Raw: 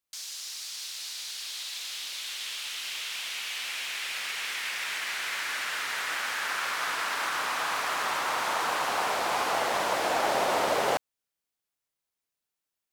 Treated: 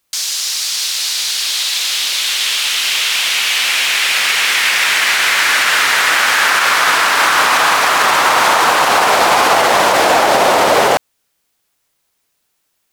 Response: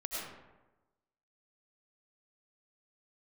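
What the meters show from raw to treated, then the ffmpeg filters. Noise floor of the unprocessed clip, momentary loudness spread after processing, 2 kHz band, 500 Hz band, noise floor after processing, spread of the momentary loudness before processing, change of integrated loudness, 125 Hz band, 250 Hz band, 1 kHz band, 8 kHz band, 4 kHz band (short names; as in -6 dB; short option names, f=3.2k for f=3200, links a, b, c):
under -85 dBFS, 5 LU, +18.5 dB, +16.0 dB, -67 dBFS, 9 LU, +18.0 dB, +16.5 dB, +16.5 dB, +17.0 dB, +19.0 dB, +19.0 dB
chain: -af "alimiter=level_in=21dB:limit=-1dB:release=50:level=0:latency=1,volume=-1dB"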